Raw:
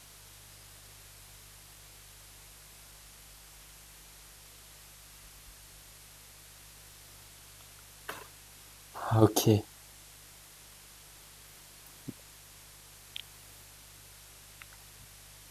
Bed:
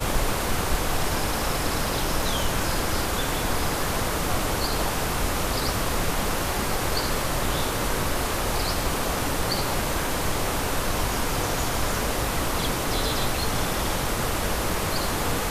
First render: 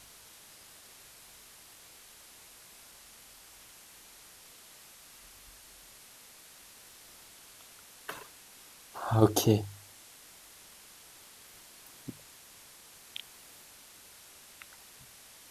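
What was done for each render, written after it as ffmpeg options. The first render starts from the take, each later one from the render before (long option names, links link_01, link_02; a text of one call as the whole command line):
ffmpeg -i in.wav -af "bandreject=frequency=50:width_type=h:width=4,bandreject=frequency=100:width_type=h:width=4,bandreject=frequency=150:width_type=h:width=4" out.wav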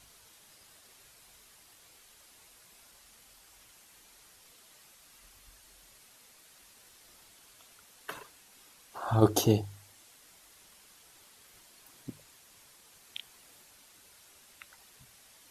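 ffmpeg -i in.wav -af "afftdn=noise_reduction=6:noise_floor=-55" out.wav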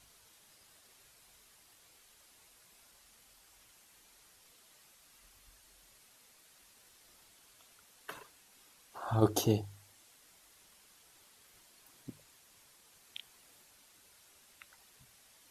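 ffmpeg -i in.wav -af "volume=-4.5dB" out.wav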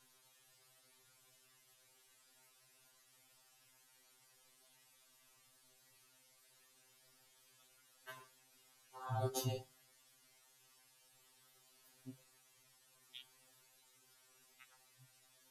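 ffmpeg -i in.wav -af "flanger=delay=5.1:depth=9.3:regen=-70:speed=0.14:shape=sinusoidal,afftfilt=real='re*2.45*eq(mod(b,6),0)':imag='im*2.45*eq(mod(b,6),0)':win_size=2048:overlap=0.75" out.wav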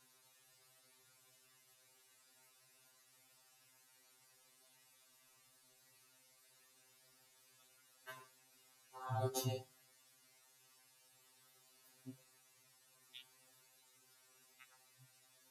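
ffmpeg -i in.wav -af "highpass=frequency=53:poles=1,bandreject=frequency=3200:width=15" out.wav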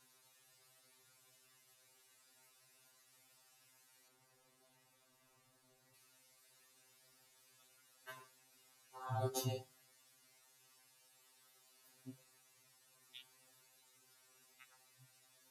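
ffmpeg -i in.wav -filter_complex "[0:a]asettb=1/sr,asplit=3[link_01][link_02][link_03];[link_01]atrim=end=4.084[link_04];[link_02]atrim=start=4.08:end=5.94,asetpts=PTS-STARTPTS,afade=type=in:duration=0.004:curve=qsin,afade=type=out:start_time=1.856:duration=0.004:curve=qsin,tiltshelf=frequency=1300:gain=5.5[link_05];[link_03]atrim=start=5.936[link_06];[link_04][link_05]acrossfade=duration=0.004:curve1=hsin:curve2=qsin[link_07];[link_07][link_06]acrossfade=duration=0.004:curve1=qsin:curve2=hsin,asettb=1/sr,asplit=3[link_08][link_09][link_10];[link_08]atrim=end=11.064[link_11];[link_09]atrim=start=11.06:end=11.84,asetpts=PTS-STARTPTS,afade=type=in:duration=0.004:curve=qsin,afade=type=out:start_time=0.776:duration=0.004:curve=qsin,lowshelf=frequency=160:gain=-10.5[link_12];[link_10]atrim=start=11.836[link_13];[link_11][link_12]acrossfade=duration=0.004:curve1=hsin:curve2=qsin[link_14];[link_14][link_13]acrossfade=duration=0.004:curve1=qsin:curve2=hsin" out.wav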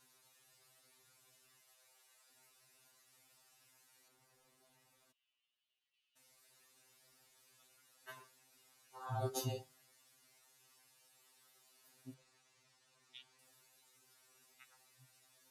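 ffmpeg -i in.wav -filter_complex "[0:a]asettb=1/sr,asplit=3[link_01][link_02][link_03];[link_01]atrim=end=1.614[link_04];[link_02]atrim=start=1.61:end=2.3,asetpts=PTS-STARTPTS,afade=type=in:duration=0.004:curve=qsin,afade=type=out:start_time=0.686:duration=0.004:curve=qsin,lowshelf=frequency=410:width_type=q:width=1.5:gain=-10.5[link_05];[link_03]atrim=start=2.296[link_06];[link_04][link_05]acrossfade=duration=0.004:curve1=hsin:curve2=qsin[link_07];[link_07][link_06]acrossfade=duration=0.004:curve1=qsin:curve2=hsin,asplit=3[link_08][link_09][link_10];[link_08]afade=type=out:start_time=5.11:duration=0.02[link_11];[link_09]bandpass=frequency=3000:width_type=q:width=9.1,afade=type=in:start_time=5.11:duration=0.02,afade=type=out:start_time=6.15:duration=0.02[link_12];[link_10]afade=type=in:start_time=6.15:duration=0.02[link_13];[link_11][link_12][link_13]amix=inputs=3:normalize=0,asettb=1/sr,asplit=3[link_14][link_15][link_16];[link_14]atrim=end=12.144[link_17];[link_15]atrim=start=12.14:end=13.39,asetpts=PTS-STARTPTS,afade=type=in:duration=0.004:curve=qsin,afade=type=out:start_time=1.246:duration=0.004:curve=qsin,lowpass=6800[link_18];[link_16]atrim=start=13.386[link_19];[link_17][link_18]acrossfade=duration=0.004:curve1=hsin:curve2=qsin[link_20];[link_20][link_19]acrossfade=duration=0.004:curve1=qsin:curve2=hsin" out.wav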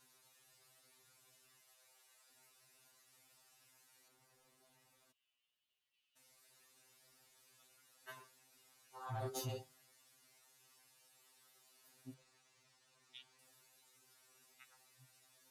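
ffmpeg -i in.wav -af "asoftclip=type=tanh:threshold=-36.5dB" out.wav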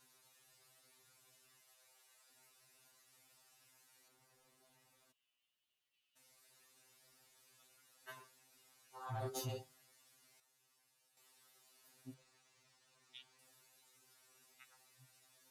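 ffmpeg -i in.wav -filter_complex "[0:a]asplit=3[link_01][link_02][link_03];[link_01]atrim=end=10.402[link_04];[link_02]atrim=start=10.398:end=11.172,asetpts=PTS-STARTPTS,volume=-8dB[link_05];[link_03]atrim=start=11.168[link_06];[link_04][link_05]acrossfade=duration=0.004:curve1=hsin:curve2=hsin[link_07];[link_07][link_06]acrossfade=duration=0.004:curve1=hsin:curve2=hsin" out.wav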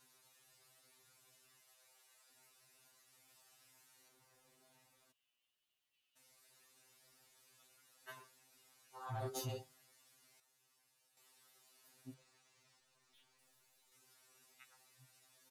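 ffmpeg -i in.wav -filter_complex "[0:a]asplit=3[link_01][link_02][link_03];[link_01]afade=type=out:start_time=3.27:duration=0.02[link_04];[link_02]asplit=2[link_05][link_06];[link_06]adelay=42,volume=-5.5dB[link_07];[link_05][link_07]amix=inputs=2:normalize=0,afade=type=in:start_time=3.27:duration=0.02,afade=type=out:start_time=4.86:duration=0.02[link_08];[link_03]afade=type=in:start_time=4.86:duration=0.02[link_09];[link_04][link_08][link_09]amix=inputs=3:normalize=0,asettb=1/sr,asplit=3[link_10][link_11][link_12];[link_10]atrim=end=12.804[link_13];[link_11]atrim=start=12.8:end=13.92,asetpts=PTS-STARTPTS,afade=type=in:duration=0.004:curve=qsin,afade=type=out:start_time=1.116:duration=0.004:curve=qsin,aeval=exprs='(tanh(2820*val(0)+0.6)-tanh(0.6))/2820':channel_layout=same[link_14];[link_12]atrim=start=13.916[link_15];[link_13][link_14]acrossfade=duration=0.004:curve1=hsin:curve2=qsin[link_16];[link_16][link_15]acrossfade=duration=0.004:curve1=qsin:curve2=hsin" out.wav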